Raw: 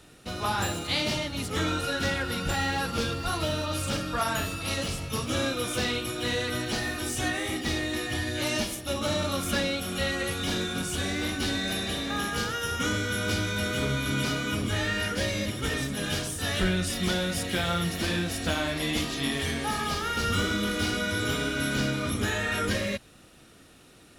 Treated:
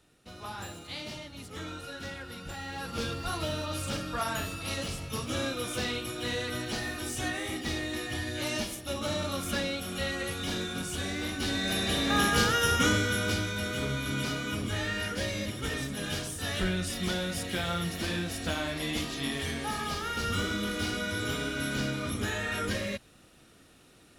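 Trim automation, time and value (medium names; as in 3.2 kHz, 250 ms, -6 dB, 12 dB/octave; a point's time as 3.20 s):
2.64 s -12 dB
3.04 s -4 dB
11.32 s -4 dB
12.20 s +5 dB
12.70 s +5 dB
13.54 s -4 dB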